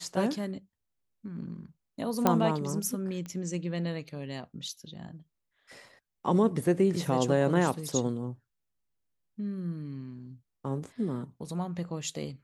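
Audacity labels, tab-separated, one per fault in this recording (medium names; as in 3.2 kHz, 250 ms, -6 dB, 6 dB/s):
2.270000	2.270000	pop -9 dBFS
3.260000	3.260000	pop -27 dBFS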